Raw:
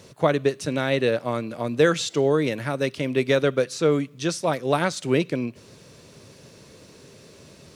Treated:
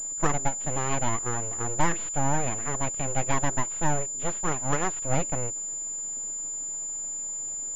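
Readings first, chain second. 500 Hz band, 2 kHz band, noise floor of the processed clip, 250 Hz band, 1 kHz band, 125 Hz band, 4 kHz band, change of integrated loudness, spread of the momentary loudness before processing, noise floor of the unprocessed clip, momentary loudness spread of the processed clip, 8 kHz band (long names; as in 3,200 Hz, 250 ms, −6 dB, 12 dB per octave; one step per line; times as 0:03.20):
−12.0 dB, −6.0 dB, −34 dBFS, −8.5 dB, +0.5 dB, −2.5 dB, −12.5 dB, −4.5 dB, 7 LU, −50 dBFS, 4 LU, +13.0 dB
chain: high-shelf EQ 2,500 Hz −9.5 dB
full-wave rectification
switching amplifier with a slow clock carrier 7,100 Hz
level −2.5 dB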